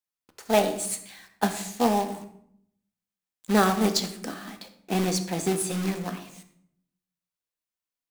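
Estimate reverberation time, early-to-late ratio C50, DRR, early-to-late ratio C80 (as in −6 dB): 0.65 s, 10.0 dB, 7.0 dB, 12.5 dB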